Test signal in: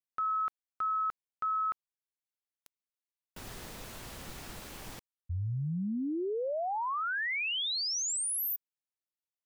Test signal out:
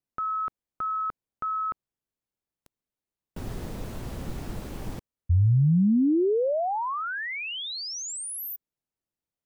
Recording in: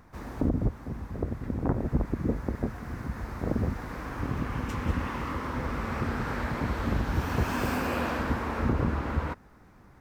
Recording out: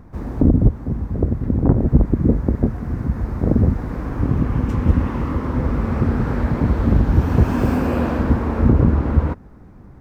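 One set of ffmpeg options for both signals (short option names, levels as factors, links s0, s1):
-af "tiltshelf=f=750:g=8,volume=2"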